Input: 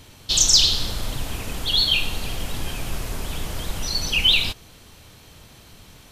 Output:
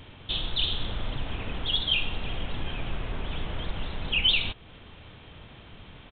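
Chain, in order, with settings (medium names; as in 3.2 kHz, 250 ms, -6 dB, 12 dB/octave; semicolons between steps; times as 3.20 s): in parallel at +2 dB: compression, threshold -33 dBFS, peak gain reduction 20.5 dB; on the sum: resampled via 8 kHz; trim -6.5 dB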